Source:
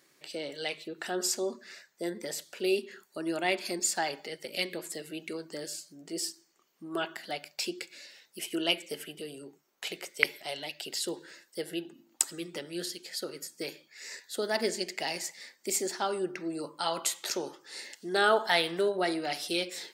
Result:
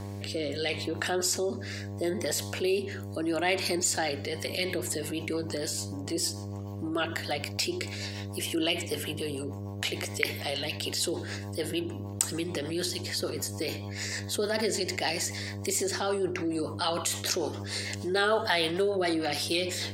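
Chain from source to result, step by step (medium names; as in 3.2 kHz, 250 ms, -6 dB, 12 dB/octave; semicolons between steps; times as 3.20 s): mains buzz 100 Hz, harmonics 11, -50 dBFS -6 dB/octave; rotary cabinet horn 0.75 Hz, later 6.7 Hz, at 4.07 s; level flattener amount 50%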